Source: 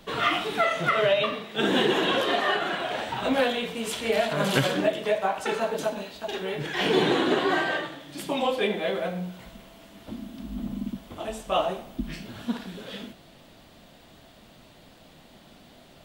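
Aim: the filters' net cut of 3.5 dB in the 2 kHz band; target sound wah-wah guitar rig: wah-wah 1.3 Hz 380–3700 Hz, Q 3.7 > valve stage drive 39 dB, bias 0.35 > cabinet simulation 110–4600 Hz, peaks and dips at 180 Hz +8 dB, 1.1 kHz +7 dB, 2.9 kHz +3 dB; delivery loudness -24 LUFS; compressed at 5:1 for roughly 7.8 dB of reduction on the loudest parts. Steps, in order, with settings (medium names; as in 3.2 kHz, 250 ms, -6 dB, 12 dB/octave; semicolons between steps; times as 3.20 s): peaking EQ 2 kHz -6 dB; compression 5:1, threshold -27 dBFS; wah-wah 1.3 Hz 380–3700 Hz, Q 3.7; valve stage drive 39 dB, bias 0.35; cabinet simulation 110–4600 Hz, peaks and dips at 180 Hz +8 dB, 1.1 kHz +7 dB, 2.9 kHz +3 dB; trim +20.5 dB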